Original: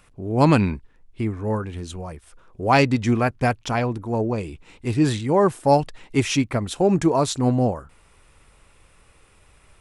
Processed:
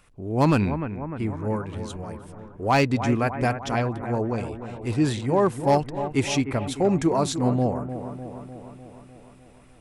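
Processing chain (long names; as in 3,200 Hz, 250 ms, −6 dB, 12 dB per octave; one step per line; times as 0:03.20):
bucket-brigade delay 301 ms, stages 4,096, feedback 63%, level −10.5 dB
gain into a clipping stage and back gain 9 dB
level −3 dB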